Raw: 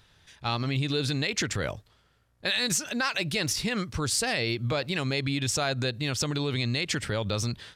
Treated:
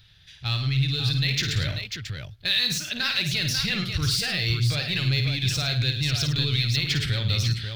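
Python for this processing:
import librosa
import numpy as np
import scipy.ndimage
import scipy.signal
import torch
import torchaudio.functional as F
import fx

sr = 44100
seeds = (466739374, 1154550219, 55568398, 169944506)

p1 = 10.0 ** (-26.5 / 20.0) * (np.abs((x / 10.0 ** (-26.5 / 20.0) + 3.0) % 4.0 - 2.0) - 1.0)
p2 = x + (p1 * librosa.db_to_amplitude(-8.0))
p3 = fx.graphic_eq(p2, sr, hz=(125, 250, 500, 1000, 4000, 8000), db=(6, -11, -9, -12, 7, -12))
p4 = fx.rider(p3, sr, range_db=10, speed_s=0.5)
p5 = p4 + fx.echo_multitap(p4, sr, ms=(53, 106, 542), db=(-7.5, -12.0, -7.0), dry=0)
p6 = fx.band_squash(p5, sr, depth_pct=100, at=(6.38, 7.06))
y = p6 * librosa.db_to_amplitude(1.5)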